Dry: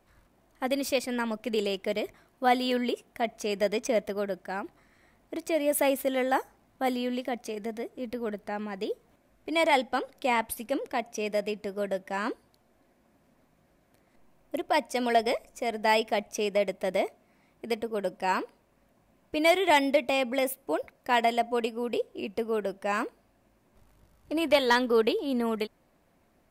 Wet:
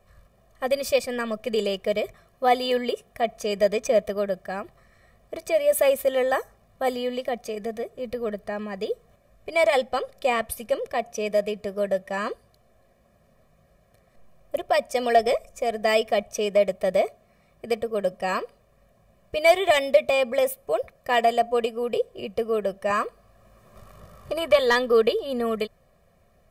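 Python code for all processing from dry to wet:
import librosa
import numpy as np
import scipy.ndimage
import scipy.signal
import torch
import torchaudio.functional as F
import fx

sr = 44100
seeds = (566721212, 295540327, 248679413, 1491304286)

y = fx.chain(x, sr, fx.peak_eq(hz=1200.0, db=6.5, octaves=0.54),
    fx.band_squash(depth_pct=40), at=(22.9, 24.59))
y = fx.low_shelf(y, sr, hz=450.0, db=4.5)
y = y + 0.89 * np.pad(y, (int(1.7 * sr / 1000.0), 0))[:len(y)]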